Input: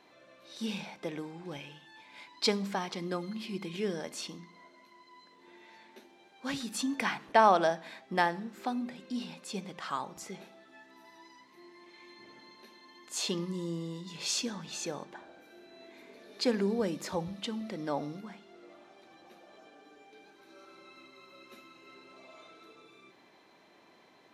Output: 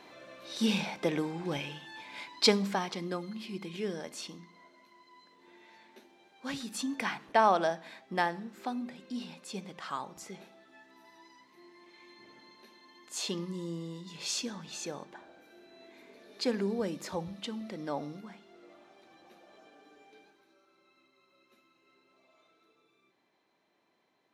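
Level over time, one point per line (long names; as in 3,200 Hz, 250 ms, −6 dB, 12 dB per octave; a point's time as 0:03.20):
0:02.10 +7.5 dB
0:03.26 −2 dB
0:20.16 −2 dB
0:20.62 −13.5 dB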